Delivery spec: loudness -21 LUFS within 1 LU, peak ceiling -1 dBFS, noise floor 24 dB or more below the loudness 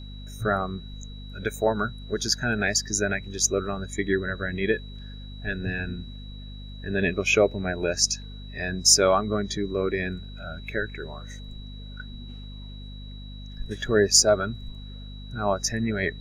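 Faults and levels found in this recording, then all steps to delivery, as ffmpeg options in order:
hum 50 Hz; harmonics up to 250 Hz; hum level -37 dBFS; steady tone 3900 Hz; tone level -47 dBFS; loudness -24.5 LUFS; peak -2.5 dBFS; loudness target -21.0 LUFS
-> -af "bandreject=f=50:t=h:w=4,bandreject=f=100:t=h:w=4,bandreject=f=150:t=h:w=4,bandreject=f=200:t=h:w=4,bandreject=f=250:t=h:w=4"
-af "bandreject=f=3.9k:w=30"
-af "volume=3.5dB,alimiter=limit=-1dB:level=0:latency=1"

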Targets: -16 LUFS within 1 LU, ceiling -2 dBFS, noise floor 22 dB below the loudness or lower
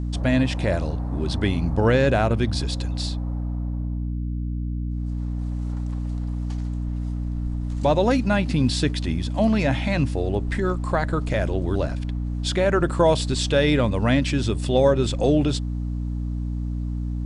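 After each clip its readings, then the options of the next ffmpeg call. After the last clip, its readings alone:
hum 60 Hz; harmonics up to 300 Hz; hum level -24 dBFS; loudness -23.5 LUFS; peak -7.0 dBFS; loudness target -16.0 LUFS
-> -af "bandreject=f=60:t=h:w=4,bandreject=f=120:t=h:w=4,bandreject=f=180:t=h:w=4,bandreject=f=240:t=h:w=4,bandreject=f=300:t=h:w=4"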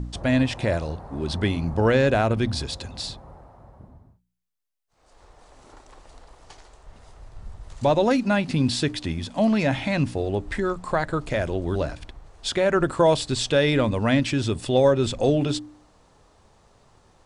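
hum none; loudness -23.5 LUFS; peak -8.0 dBFS; loudness target -16.0 LUFS
-> -af "volume=7.5dB,alimiter=limit=-2dB:level=0:latency=1"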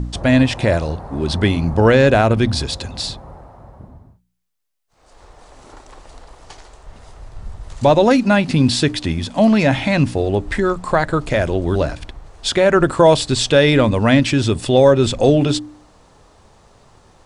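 loudness -16.0 LUFS; peak -2.0 dBFS; noise floor -54 dBFS

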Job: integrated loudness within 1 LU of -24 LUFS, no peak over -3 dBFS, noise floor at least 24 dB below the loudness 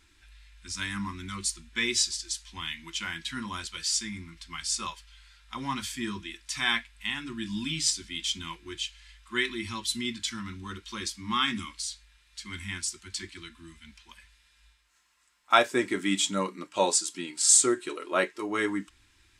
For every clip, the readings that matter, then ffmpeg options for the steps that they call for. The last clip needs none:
loudness -29.0 LUFS; peak -4.5 dBFS; loudness target -24.0 LUFS
-> -af "volume=5dB,alimiter=limit=-3dB:level=0:latency=1"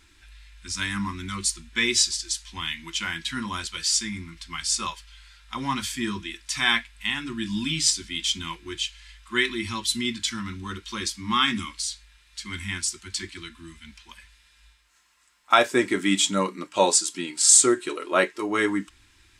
loudness -24.5 LUFS; peak -3.0 dBFS; noise floor -59 dBFS

